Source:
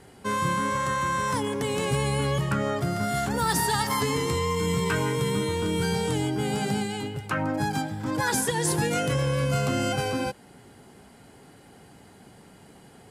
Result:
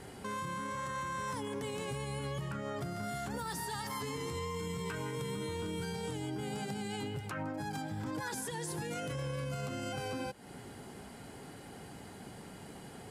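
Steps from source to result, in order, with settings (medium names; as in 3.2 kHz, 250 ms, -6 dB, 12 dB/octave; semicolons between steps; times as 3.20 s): compression 5:1, threshold -37 dBFS, peak gain reduction 14.5 dB; peak limiter -32 dBFS, peak gain reduction 6.5 dB; trim +2 dB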